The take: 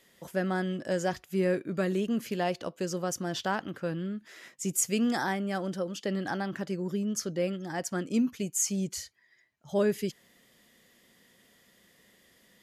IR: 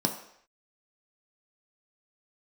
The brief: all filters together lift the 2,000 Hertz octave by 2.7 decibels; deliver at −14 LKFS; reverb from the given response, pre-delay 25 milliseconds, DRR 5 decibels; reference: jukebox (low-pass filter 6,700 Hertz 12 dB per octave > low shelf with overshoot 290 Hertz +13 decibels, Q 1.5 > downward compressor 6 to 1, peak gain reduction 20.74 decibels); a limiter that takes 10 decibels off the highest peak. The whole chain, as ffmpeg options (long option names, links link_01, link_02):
-filter_complex "[0:a]equalizer=frequency=2000:width_type=o:gain=4,alimiter=limit=-23.5dB:level=0:latency=1,asplit=2[link_01][link_02];[1:a]atrim=start_sample=2205,adelay=25[link_03];[link_02][link_03]afir=irnorm=-1:irlink=0,volume=-13dB[link_04];[link_01][link_04]amix=inputs=2:normalize=0,lowpass=6700,lowshelf=frequency=290:width_type=q:width=1.5:gain=13,acompressor=threshold=-27dB:ratio=6,volume=16dB"